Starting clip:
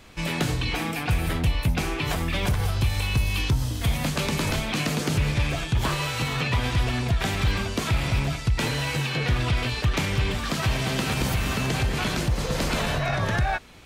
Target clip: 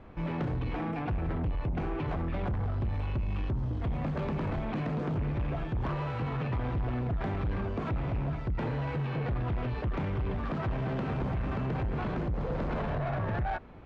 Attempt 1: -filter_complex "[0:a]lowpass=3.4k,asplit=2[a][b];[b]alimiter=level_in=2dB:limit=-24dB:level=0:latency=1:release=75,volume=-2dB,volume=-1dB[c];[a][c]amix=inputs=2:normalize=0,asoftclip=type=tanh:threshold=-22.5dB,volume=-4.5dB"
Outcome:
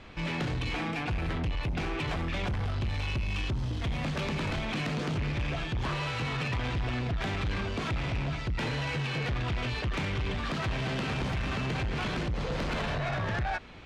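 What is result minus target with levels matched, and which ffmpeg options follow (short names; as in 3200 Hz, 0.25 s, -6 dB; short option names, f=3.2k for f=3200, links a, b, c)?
4000 Hz band +14.0 dB
-filter_complex "[0:a]lowpass=1.1k,asplit=2[a][b];[b]alimiter=level_in=2dB:limit=-24dB:level=0:latency=1:release=75,volume=-2dB,volume=-1dB[c];[a][c]amix=inputs=2:normalize=0,asoftclip=type=tanh:threshold=-22.5dB,volume=-4.5dB"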